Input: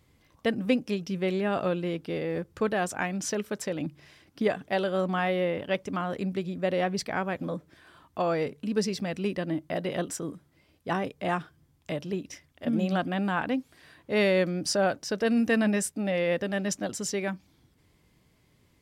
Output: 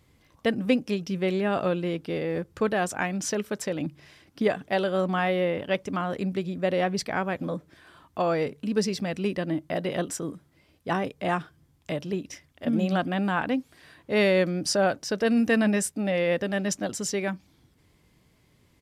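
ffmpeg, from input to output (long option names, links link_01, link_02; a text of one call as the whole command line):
ffmpeg -i in.wav -af "aresample=32000,aresample=44100,volume=2dB" out.wav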